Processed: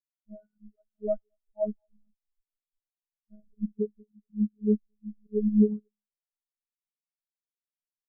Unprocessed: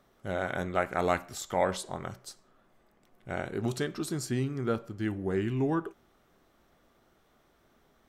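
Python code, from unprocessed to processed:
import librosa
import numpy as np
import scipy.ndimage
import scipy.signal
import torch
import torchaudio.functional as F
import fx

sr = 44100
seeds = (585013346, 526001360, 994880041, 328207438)

p1 = fx.riaa(x, sr, side='playback')
p2 = fx.dereverb_blind(p1, sr, rt60_s=1.5)
p3 = fx.low_shelf(p2, sr, hz=240.0, db=5.5, at=(3.42, 3.9))
p4 = fx.echo_thinned(p3, sr, ms=221, feedback_pct=61, hz=280.0, wet_db=-12.0)
p5 = fx.level_steps(p4, sr, step_db=14)
p6 = p4 + (p5 * librosa.db_to_amplitude(-0.5))
p7 = fx.auto_swell(p6, sr, attack_ms=112.0)
p8 = fx.robotise(p7, sr, hz=211.0)
p9 = fx.comb_fb(p8, sr, f0_hz=91.0, decay_s=1.5, harmonics='all', damping=0.0, mix_pct=30)
p10 = fx.echo_feedback(p9, sr, ms=290, feedback_pct=52, wet_db=-22.5)
y = fx.spectral_expand(p10, sr, expansion=4.0)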